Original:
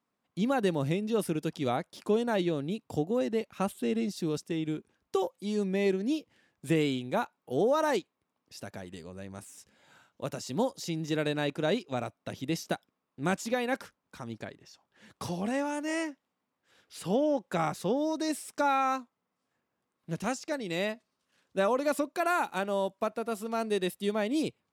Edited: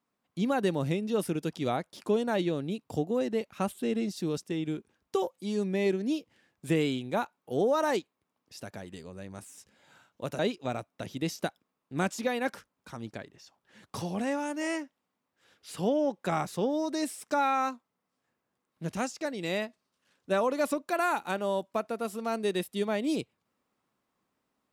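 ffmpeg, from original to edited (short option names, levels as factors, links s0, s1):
-filter_complex "[0:a]asplit=2[s0][s1];[s0]atrim=end=10.392[s2];[s1]atrim=start=11.658[s3];[s2][s3]acrossfade=d=0.004:c1=hsin:c2=hsin"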